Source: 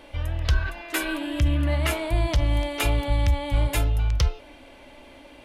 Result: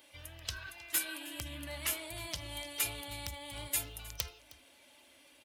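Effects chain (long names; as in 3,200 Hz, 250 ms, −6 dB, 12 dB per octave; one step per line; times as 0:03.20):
spectral magnitudes quantised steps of 15 dB
high-pass filter 89 Hz 12 dB per octave
first-order pre-emphasis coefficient 0.9
wrap-around overflow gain 19 dB
on a send: single-tap delay 313 ms −20 dB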